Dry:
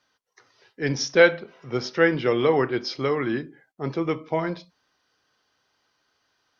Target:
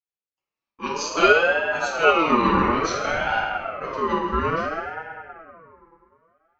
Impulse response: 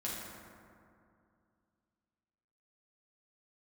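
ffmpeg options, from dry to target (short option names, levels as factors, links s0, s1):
-filter_complex "[0:a]agate=range=0.0251:threshold=0.00501:ratio=16:detection=peak[s0];[1:a]atrim=start_sample=2205[s1];[s0][s1]afir=irnorm=-1:irlink=0,aeval=exprs='val(0)*sin(2*PI*900*n/s+900*0.25/0.59*sin(2*PI*0.59*n/s))':c=same,volume=1.19"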